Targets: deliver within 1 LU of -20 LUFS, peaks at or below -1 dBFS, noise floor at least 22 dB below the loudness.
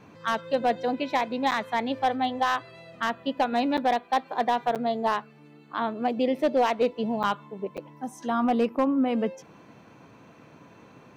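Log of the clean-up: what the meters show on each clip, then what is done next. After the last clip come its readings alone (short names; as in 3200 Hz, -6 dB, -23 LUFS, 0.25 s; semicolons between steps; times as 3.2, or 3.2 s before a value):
clipped 0.6%; flat tops at -15.5 dBFS; dropouts 5; longest dropout 7.7 ms; loudness -27.0 LUFS; peak -15.5 dBFS; loudness target -20.0 LUFS
-> clip repair -15.5 dBFS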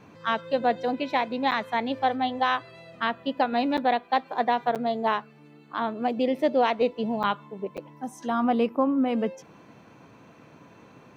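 clipped 0.0%; dropouts 5; longest dropout 7.7 ms
-> interpolate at 1.51/3.77/4.75/7.23/7.77, 7.7 ms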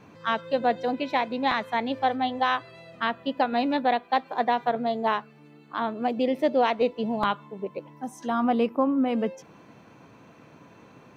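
dropouts 0; loudness -26.5 LUFS; peak -10.5 dBFS; loudness target -20.0 LUFS
-> gain +6.5 dB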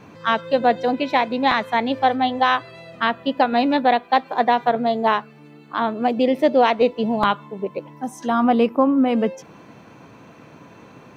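loudness -20.0 LUFS; peak -4.0 dBFS; noise floor -46 dBFS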